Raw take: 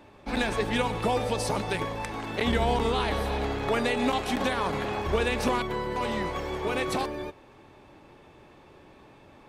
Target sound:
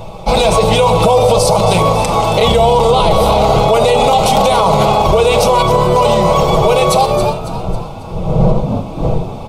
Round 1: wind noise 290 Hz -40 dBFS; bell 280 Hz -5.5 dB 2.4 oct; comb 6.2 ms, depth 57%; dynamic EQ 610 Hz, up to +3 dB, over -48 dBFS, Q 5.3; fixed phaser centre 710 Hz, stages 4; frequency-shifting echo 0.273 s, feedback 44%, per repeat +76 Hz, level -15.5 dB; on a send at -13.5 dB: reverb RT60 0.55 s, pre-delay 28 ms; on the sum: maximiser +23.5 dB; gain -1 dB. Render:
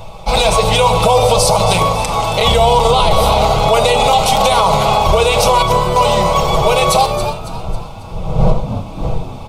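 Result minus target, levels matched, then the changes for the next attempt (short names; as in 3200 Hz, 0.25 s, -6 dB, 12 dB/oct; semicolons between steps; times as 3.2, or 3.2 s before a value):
250 Hz band -4.0 dB
change: bell 280 Hz +3.5 dB 2.4 oct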